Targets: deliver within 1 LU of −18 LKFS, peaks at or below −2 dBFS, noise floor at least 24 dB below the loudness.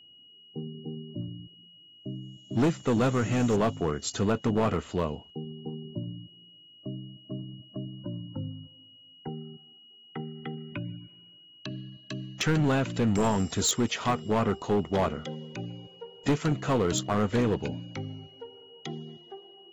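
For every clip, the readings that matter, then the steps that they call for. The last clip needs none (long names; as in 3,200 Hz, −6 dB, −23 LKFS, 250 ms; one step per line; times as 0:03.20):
share of clipped samples 1.8%; peaks flattened at −19.5 dBFS; interfering tone 2,900 Hz; level of the tone −52 dBFS; integrated loudness −30.0 LKFS; sample peak −19.5 dBFS; target loudness −18.0 LKFS
→ clipped peaks rebuilt −19.5 dBFS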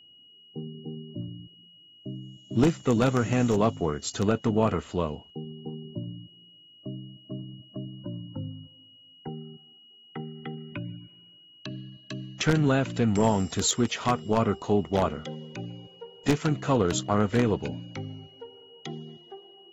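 share of clipped samples 0.0%; interfering tone 2,900 Hz; level of the tone −52 dBFS
→ notch filter 2,900 Hz, Q 30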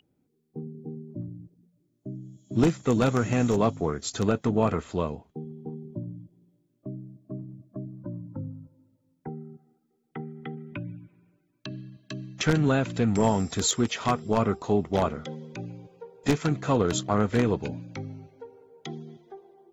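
interfering tone none found; integrated loudness −27.5 LKFS; sample peak −10.5 dBFS; target loudness −18.0 LKFS
→ level +9.5 dB
brickwall limiter −2 dBFS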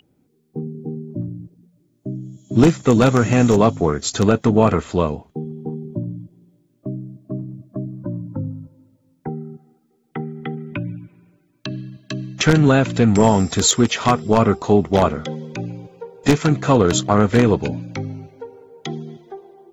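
integrated loudness −18.0 LKFS; sample peak −2.0 dBFS; background noise floor −63 dBFS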